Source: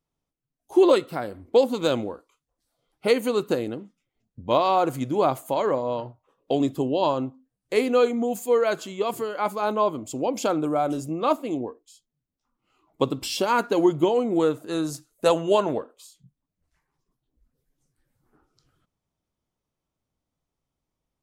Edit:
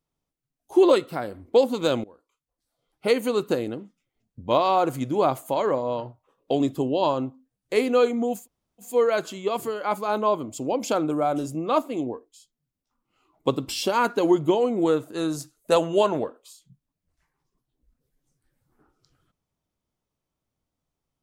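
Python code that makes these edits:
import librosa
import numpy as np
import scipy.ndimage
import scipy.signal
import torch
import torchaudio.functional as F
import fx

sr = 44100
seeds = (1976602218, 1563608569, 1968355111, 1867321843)

y = fx.edit(x, sr, fx.fade_in_from(start_s=2.04, length_s=1.48, curve='qsin', floor_db=-21.0),
    fx.insert_room_tone(at_s=8.4, length_s=0.46, crossfade_s=0.16), tone=tone)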